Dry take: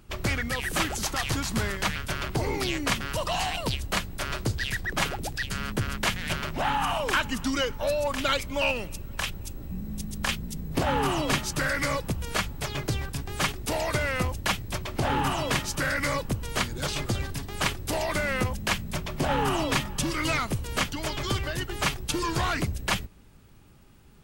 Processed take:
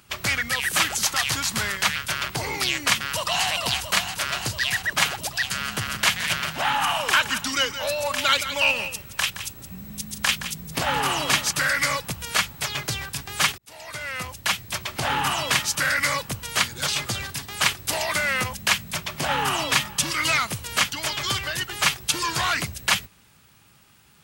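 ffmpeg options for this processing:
ffmpeg -i in.wav -filter_complex "[0:a]asplit=2[link_01][link_02];[link_02]afade=type=in:start_time=3:duration=0.01,afade=type=out:start_time=3.46:duration=0.01,aecho=0:1:340|680|1020|1360|1700|2040|2380|2720|3060|3400|3740|4080:0.446684|0.357347|0.285877|0.228702|0.182962|0.146369|0.117095|0.0936763|0.0749411|0.0599529|0.0479623|0.0383698[link_03];[link_01][link_03]amix=inputs=2:normalize=0,asplit=3[link_04][link_05][link_06];[link_04]afade=type=out:start_time=5.59:duration=0.02[link_07];[link_05]aecho=1:1:169:0.282,afade=type=in:start_time=5.59:duration=0.02,afade=type=out:start_time=11.5:duration=0.02[link_08];[link_06]afade=type=in:start_time=11.5:duration=0.02[link_09];[link_07][link_08][link_09]amix=inputs=3:normalize=0,asplit=2[link_10][link_11];[link_10]atrim=end=13.58,asetpts=PTS-STARTPTS,afade=type=out:start_time=13.576:duration=0.004:curve=hsin[link_12];[link_11]atrim=start=13.58,asetpts=PTS-STARTPTS,afade=type=in:duration=1.25[link_13];[link_12][link_13]concat=n=2:v=0:a=1,highpass=150,equalizer=frequency=320:width=0.51:gain=-14.5,volume=8.5dB" out.wav

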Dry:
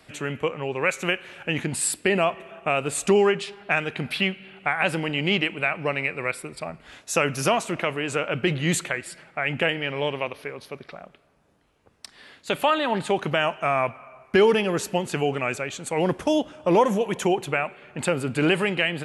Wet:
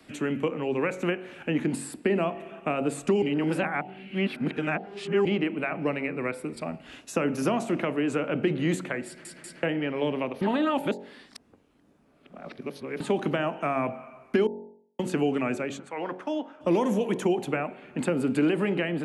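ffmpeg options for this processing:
ffmpeg -i in.wav -filter_complex "[0:a]asettb=1/sr,asplit=3[link_01][link_02][link_03];[link_01]atrim=end=6.664[link_04];[link_02]atrim=start=6.66:end=7.13,asetpts=PTS-STARTPTS,afade=type=in:duration=0.004:curve=qsin,afade=type=out:start_time=0.466:duration=0.004:curve=qsin,equalizer=frequency=2800:width=7.1:gain=9[link_05];[link_03]atrim=start=7.126[link_06];[link_04][link_05]acrossfade=duration=0.004:curve1=hsin:curve2=qsin[link_07];[link_07][link_06]acrossfade=duration=0.004:curve1=qsin:curve2=hsin,asplit=3[link_08][link_09][link_10];[link_08]afade=type=out:start_time=15.78:duration=0.02[link_11];[link_09]bandpass=frequency=1300:width_type=q:width=1.3,afade=type=in:start_time=15.78:duration=0.02,afade=type=out:start_time=16.6:duration=0.02[link_12];[link_10]afade=type=in:start_time=16.6:duration=0.02[link_13];[link_11][link_12][link_13]amix=inputs=3:normalize=0,asplit=10[link_14][link_15][link_16][link_17][link_18][link_19][link_20][link_21][link_22][link_23];[link_14]atrim=end=3.222[link_24];[link_15]atrim=start=3.218:end=5.252,asetpts=PTS-STARTPTS,areverse[link_25];[link_16]atrim=start=5.248:end=9.252[link_26];[link_17]atrim=start=9.058:end=9.252[link_27];[link_18]atrim=start=9.058:end=9.252[link_28];[link_19]atrim=start=9.628:end=10.412[link_29];[link_20]atrim=start=10.408:end=13.002,asetpts=PTS-STARTPTS,areverse[link_30];[link_21]atrim=start=12.998:end=14.47,asetpts=PTS-STARTPTS,afade=type=out:start_time=1.468:duration=0.004:curve=hsin[link_31];[link_22]atrim=start=14.47:end=14.99,asetpts=PTS-STARTPTS,volume=0[link_32];[link_23]atrim=start=14.99,asetpts=PTS-STARTPTS,afade=type=in:duration=0.004:curve=hsin[link_33];[link_24][link_25]acrossfade=duration=0.004:curve1=hsin:curve2=hsin[link_34];[link_34][link_26]acrossfade=duration=0.004:curve1=hsin:curve2=hsin[link_35];[link_35][link_27]acrossfade=duration=0.004:curve1=hsin:curve2=hsin[link_36];[link_36][link_28]acrossfade=duration=0.004:curve1=hsin:curve2=hsin[link_37];[link_37][link_29]acrossfade=duration=0.004:curve1=hsin:curve2=hsin[link_38];[link_38][link_30]acrossfade=duration=0.004:curve1=hsin:curve2=hsin[link_39];[link_31][link_32][link_33]concat=n=3:v=0:a=1[link_40];[link_39][link_40]acrossfade=duration=0.004:curve1=hsin:curve2=hsin,equalizer=frequency=260:width=1.3:gain=12,bandreject=frequency=46.14:width_type=h:width=4,bandreject=frequency=92.28:width_type=h:width=4,bandreject=frequency=138.42:width_type=h:width=4,bandreject=frequency=184.56:width_type=h:width=4,bandreject=frequency=230.7:width_type=h:width=4,bandreject=frequency=276.84:width_type=h:width=4,bandreject=frequency=322.98:width_type=h:width=4,bandreject=frequency=369.12:width_type=h:width=4,bandreject=frequency=415.26:width_type=h:width=4,bandreject=frequency=461.4:width_type=h:width=4,bandreject=frequency=507.54:width_type=h:width=4,bandreject=frequency=553.68:width_type=h:width=4,bandreject=frequency=599.82:width_type=h:width=4,bandreject=frequency=645.96:width_type=h:width=4,bandreject=frequency=692.1:width_type=h:width=4,bandreject=frequency=738.24:width_type=h:width=4,bandreject=frequency=784.38:width_type=h:width=4,bandreject=frequency=830.52:width_type=h:width=4,bandreject=frequency=876.66:width_type=h:width=4,bandreject=frequency=922.8:width_type=h:width=4,acrossover=split=120|310|1900[link_41][link_42][link_43][link_44];[link_41]acompressor=threshold=-49dB:ratio=4[link_45];[link_42]acompressor=threshold=-25dB:ratio=4[link_46];[link_43]acompressor=threshold=-22dB:ratio=4[link_47];[link_44]acompressor=threshold=-38dB:ratio=4[link_48];[link_45][link_46][link_47][link_48]amix=inputs=4:normalize=0,volume=-3dB" out.wav

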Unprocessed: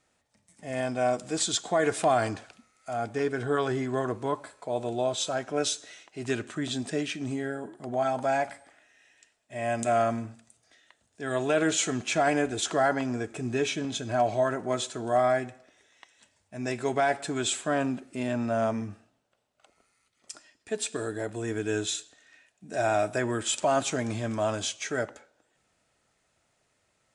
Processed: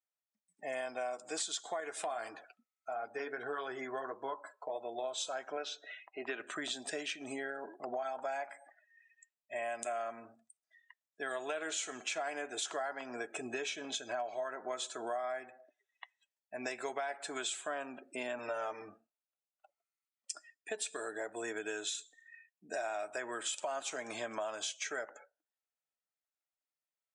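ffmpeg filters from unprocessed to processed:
ffmpeg -i in.wav -filter_complex "[0:a]asettb=1/sr,asplit=3[link_01][link_02][link_03];[link_01]atrim=end=1.804[link_04];[link_02]atrim=start=1.8:end=5.04,asetpts=PTS-STARTPTS,afade=type=in:duration=0.004:curve=qsin,afade=type=out:start_time=3.236:duration=0.004:curve=qsin,flanger=delay=5.8:depth=5.1:regen=-49:speed=1.7:shape=triangular[link_05];[link_03]atrim=start=5.036[link_06];[link_04][link_05]acrossfade=duration=0.004:curve1=hsin:curve2=qsin[link_07];[link_07][link_06]acrossfade=duration=0.004:curve1=qsin:curve2=hsin,asettb=1/sr,asplit=3[link_08][link_09][link_10];[link_08]atrim=end=5.574[link_11];[link_09]atrim=start=5.57:end=6.4,asetpts=PTS-STARTPTS,afade=type=in:duration=0.004:curve=qsin,afade=type=out:start_time=0.826:duration=0.004:curve=qsin,highpass=200,lowpass=3100[link_12];[link_10]atrim=start=6.396[link_13];[link_11][link_12]acrossfade=duration=0.004:curve1=hsin:curve2=qsin[link_14];[link_14][link_13]acrossfade=duration=0.004:curve1=qsin:curve2=hsin,asettb=1/sr,asplit=3[link_15][link_16][link_17];[link_15]atrim=end=18.384[link_18];[link_16]atrim=start=18.38:end=18.89,asetpts=PTS-STARTPTS,afade=type=in:duration=0.004:curve=qsin,afade=type=out:start_time=0.506:duration=0.004:curve=qsin,aecho=1:1:6.6:0.73,atrim=end_sample=22491[link_19];[link_17]atrim=start=18.886[link_20];[link_18][link_19]acrossfade=duration=0.004:curve1=hsin:curve2=qsin[link_21];[link_21][link_20]acrossfade=duration=0.004:curve1=qsin:curve2=hsin,afftdn=noise_reduction=33:noise_floor=-50,highpass=590,acompressor=threshold=-41dB:ratio=6,volume=4.5dB" out.wav

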